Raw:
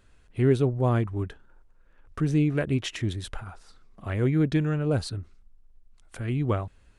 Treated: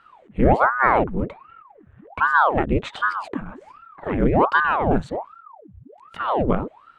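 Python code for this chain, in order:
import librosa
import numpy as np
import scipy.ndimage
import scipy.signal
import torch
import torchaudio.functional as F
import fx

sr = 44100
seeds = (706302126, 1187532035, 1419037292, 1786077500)

y = scipy.signal.lfilter(np.full(9, 1.0 / 9), 1.0, x)
y = fx.ring_lfo(y, sr, carrier_hz=720.0, swing_pct=90, hz=1.3)
y = y * librosa.db_to_amplitude(8.5)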